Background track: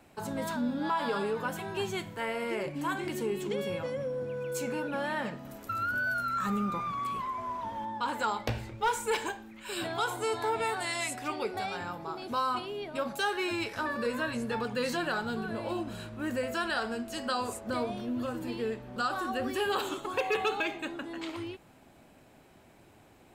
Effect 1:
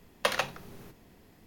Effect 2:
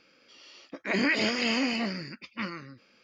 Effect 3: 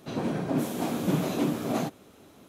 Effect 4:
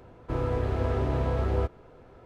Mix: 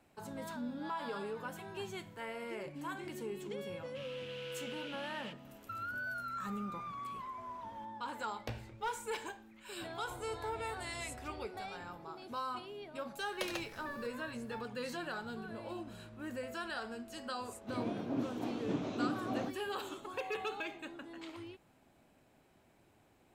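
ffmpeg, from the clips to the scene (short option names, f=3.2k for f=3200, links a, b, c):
-filter_complex "[4:a]asplit=2[a][b];[0:a]volume=-9.5dB[c];[a]highpass=f=2.9k:t=q:w=5.7[d];[b]acompressor=threshold=-39dB:ratio=6:attack=3.2:release=140:knee=1:detection=peak[e];[1:a]equalizer=f=1.2k:w=0.72:g=-8.5[f];[3:a]highpass=100,equalizer=f=110:t=q:w=4:g=10,equalizer=f=160:t=q:w=4:g=-9,equalizer=f=280:t=q:w=4:g=4,equalizer=f=1.8k:t=q:w=4:g=-3,equalizer=f=4.7k:t=q:w=4:g=-4,lowpass=f=5.7k:w=0.5412,lowpass=f=5.7k:w=1.3066[g];[d]atrim=end=2.25,asetpts=PTS-STARTPTS,volume=-7dB,afade=t=in:d=0.004:c=hsin,afade=t=out:st=2.246:d=0.004:c=hsin,adelay=3660[h];[e]atrim=end=2.25,asetpts=PTS-STARTPTS,volume=-10.5dB,afade=t=in:d=0.004:c=hsin,afade=t=out:st=2.246:d=0.004:c=hsin,adelay=9800[i];[f]atrim=end=1.46,asetpts=PTS-STARTPTS,volume=-8.5dB,afade=t=in:d=0.004:c=hsin,afade=t=out:st=1.456:d=0.004:c=hsin,adelay=580356S[j];[g]atrim=end=2.48,asetpts=PTS-STARTPTS,volume=-10.5dB,afade=t=in:d=0.004:c=hsin,afade=t=out:st=2.476:d=0.004:c=hsin,adelay=17610[k];[c][h][i][j][k]amix=inputs=5:normalize=0"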